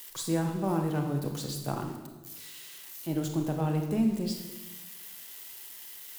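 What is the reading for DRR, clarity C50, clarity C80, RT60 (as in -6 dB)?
3.5 dB, 5.5 dB, 7.5 dB, 1.2 s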